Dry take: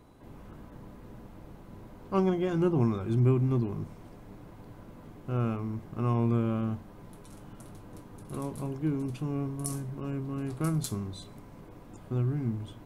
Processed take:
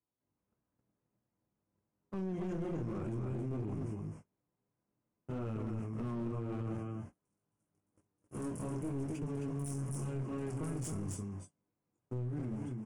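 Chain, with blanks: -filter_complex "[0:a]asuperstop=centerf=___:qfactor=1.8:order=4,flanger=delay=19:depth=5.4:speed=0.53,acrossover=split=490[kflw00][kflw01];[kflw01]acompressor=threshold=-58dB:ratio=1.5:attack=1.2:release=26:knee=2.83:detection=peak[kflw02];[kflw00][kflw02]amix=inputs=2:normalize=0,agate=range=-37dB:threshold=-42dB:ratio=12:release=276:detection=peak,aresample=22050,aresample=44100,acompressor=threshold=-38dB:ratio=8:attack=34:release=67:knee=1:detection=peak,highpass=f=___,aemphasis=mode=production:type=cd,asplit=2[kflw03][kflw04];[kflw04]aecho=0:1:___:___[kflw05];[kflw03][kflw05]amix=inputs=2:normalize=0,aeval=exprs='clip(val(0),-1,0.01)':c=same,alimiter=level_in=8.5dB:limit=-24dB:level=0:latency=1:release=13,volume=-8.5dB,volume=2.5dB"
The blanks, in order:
3900, 76, 266, 0.596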